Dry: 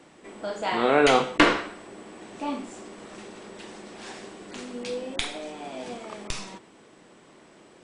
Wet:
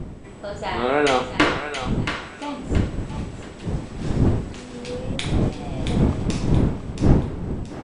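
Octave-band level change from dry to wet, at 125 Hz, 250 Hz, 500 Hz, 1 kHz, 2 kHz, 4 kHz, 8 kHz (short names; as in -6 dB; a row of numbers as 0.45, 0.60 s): +22.5, +7.5, +1.5, +1.0, +1.0, +1.0, +1.0 dB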